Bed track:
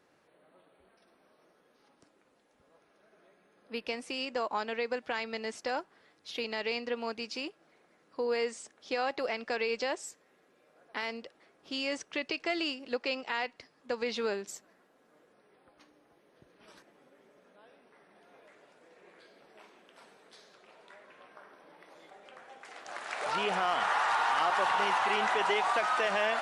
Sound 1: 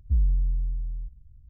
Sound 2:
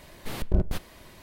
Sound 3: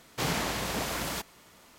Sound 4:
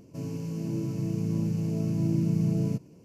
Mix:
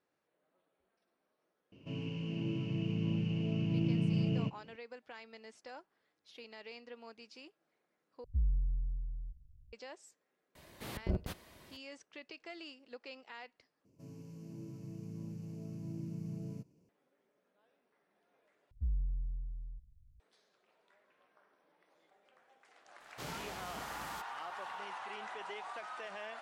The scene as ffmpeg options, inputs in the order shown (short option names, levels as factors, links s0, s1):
-filter_complex "[4:a]asplit=2[s0][s1];[1:a]asplit=2[s2][s3];[0:a]volume=0.158[s4];[s0]lowpass=f=2900:t=q:w=11[s5];[2:a]highpass=57[s6];[s4]asplit=4[s7][s8][s9][s10];[s7]atrim=end=8.244[s11];[s2]atrim=end=1.49,asetpts=PTS-STARTPTS,volume=0.335[s12];[s8]atrim=start=9.726:end=13.854[s13];[s1]atrim=end=3.04,asetpts=PTS-STARTPTS,volume=0.15[s14];[s9]atrim=start=16.886:end=18.714[s15];[s3]atrim=end=1.49,asetpts=PTS-STARTPTS,volume=0.237[s16];[s10]atrim=start=20.196[s17];[s5]atrim=end=3.04,asetpts=PTS-STARTPTS,volume=0.501,afade=t=in:d=0.004:c=hsin,afade=t=out:st=3.036:d=0.004:c=hsin,adelay=1720[s18];[s6]atrim=end=1.22,asetpts=PTS-STARTPTS,volume=0.398,afade=t=in:d=0.004:c=hsin,afade=t=out:st=1.216:d=0.004:c=hsin,adelay=10550[s19];[3:a]atrim=end=1.78,asetpts=PTS-STARTPTS,volume=0.178,afade=t=in:d=0.004:c=hsin,afade=t=out:st=1.776:d=0.004:c=hsin,adelay=23000[s20];[s11][s12]acrossfade=d=0.004:c1=hsin:c2=hsin[s21];[s21][s13]acrossfade=d=0.004:c1=hsin:c2=hsin[s22];[s22][s14]acrossfade=d=0.004:c1=hsin:c2=hsin[s23];[s23][s15]acrossfade=d=0.004:c1=hsin:c2=hsin[s24];[s24][s16]acrossfade=d=0.004:c1=hsin:c2=hsin[s25];[s25][s17]acrossfade=d=0.004:c1=hsin:c2=hsin[s26];[s26][s18][s19][s20]amix=inputs=4:normalize=0"